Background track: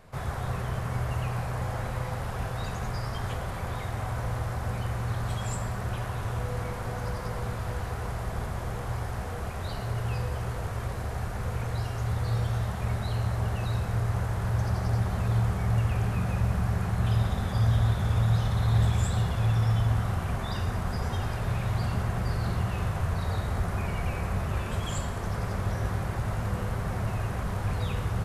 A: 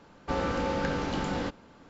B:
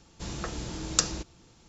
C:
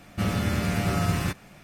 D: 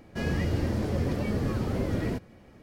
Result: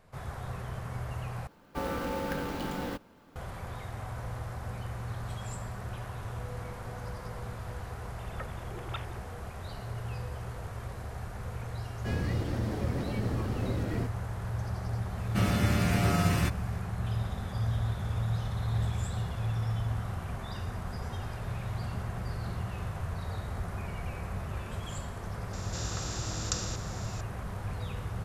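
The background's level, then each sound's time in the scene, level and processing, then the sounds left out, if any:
background track −7 dB
0:01.47: overwrite with A −4 dB + converter with an unsteady clock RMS 0.021 ms
0:07.96: mix in B −14.5 dB + three sine waves on the formant tracks
0:11.89: mix in D −4.5 dB + brickwall limiter −19.5 dBFS
0:15.17: mix in C −1.5 dB
0:25.53: mix in B −11 dB + compressor on every frequency bin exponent 0.4

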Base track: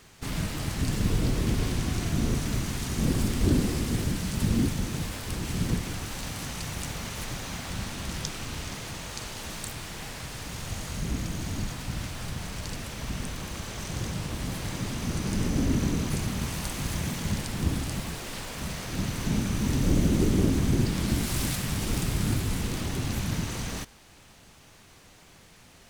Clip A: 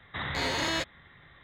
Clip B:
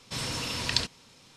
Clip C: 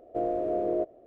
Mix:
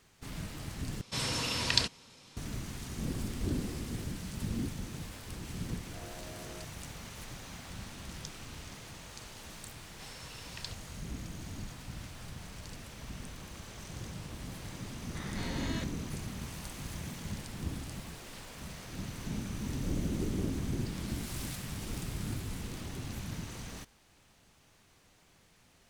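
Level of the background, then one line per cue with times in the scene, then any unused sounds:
base track −10.5 dB
0:01.01: overwrite with B −0.5 dB
0:05.80: mix in C −13.5 dB + soft clipping −34 dBFS
0:09.88: mix in B −16.5 dB + Butterworth high-pass 400 Hz
0:15.01: mix in A −12.5 dB

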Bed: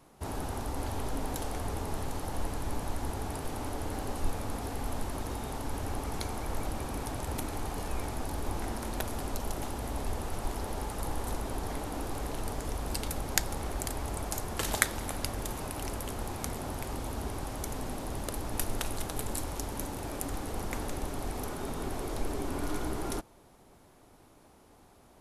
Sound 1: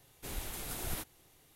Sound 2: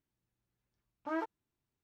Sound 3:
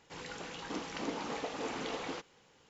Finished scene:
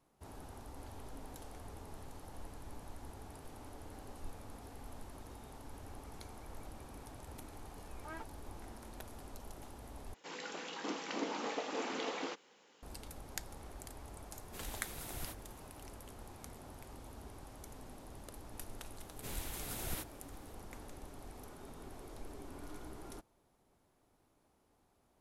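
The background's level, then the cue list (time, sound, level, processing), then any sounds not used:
bed −15 dB
0:06.98: mix in 2 −10.5 dB + tilt shelving filter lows −7 dB
0:10.14: overwrite with 3 −0.5 dB + high-pass filter 210 Hz 24 dB per octave
0:14.30: mix in 1 −6.5 dB
0:19.00: mix in 1 −2.5 dB

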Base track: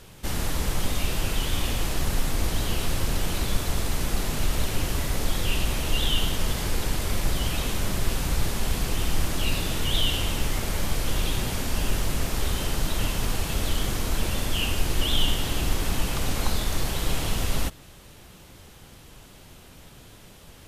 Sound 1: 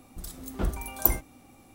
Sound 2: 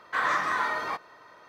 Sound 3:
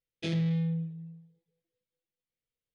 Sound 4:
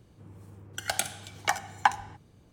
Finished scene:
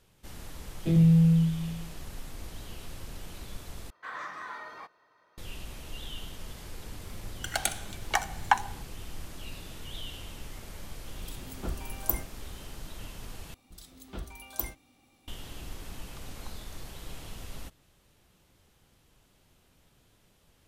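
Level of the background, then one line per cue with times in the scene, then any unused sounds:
base track −16.5 dB
0:00.63: mix in 3 −2.5 dB + spectral tilt −4.5 dB per octave
0:03.90: overwrite with 2 −13.5 dB
0:06.66: mix in 4 −0.5 dB + notch filter 5,000 Hz
0:11.04: mix in 1 −6.5 dB
0:13.54: overwrite with 1 −11.5 dB + parametric band 3,600 Hz +10 dB 1.5 octaves

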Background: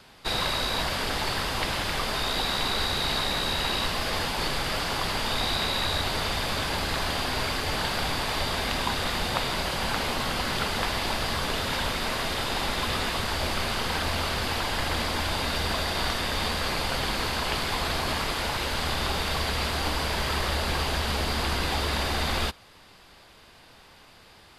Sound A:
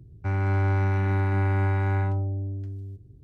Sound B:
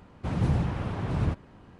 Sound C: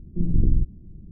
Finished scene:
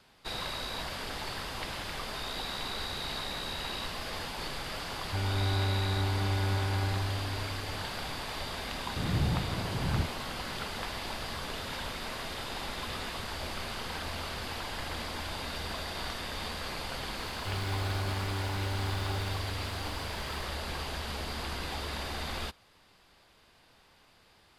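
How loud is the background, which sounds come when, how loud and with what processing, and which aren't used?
background −9.5 dB
0:04.88: mix in A −7 dB
0:08.72: mix in B −3.5 dB + slew-rate limiting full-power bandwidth 13 Hz
0:17.21: mix in A −11 dB + spike at every zero crossing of −33.5 dBFS
not used: C

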